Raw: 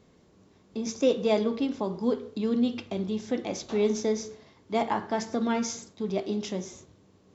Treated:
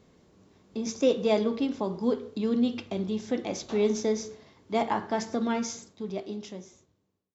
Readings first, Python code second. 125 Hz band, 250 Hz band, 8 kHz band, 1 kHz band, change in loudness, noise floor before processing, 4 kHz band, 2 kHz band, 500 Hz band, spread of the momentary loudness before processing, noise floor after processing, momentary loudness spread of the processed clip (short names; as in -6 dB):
-1.0 dB, -0.5 dB, n/a, 0.0 dB, 0.0 dB, -60 dBFS, -0.5 dB, -0.5 dB, 0.0 dB, 9 LU, -74 dBFS, 13 LU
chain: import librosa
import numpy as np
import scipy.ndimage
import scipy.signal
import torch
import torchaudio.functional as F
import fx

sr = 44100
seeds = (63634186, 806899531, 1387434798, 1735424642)

y = fx.fade_out_tail(x, sr, length_s=2.1)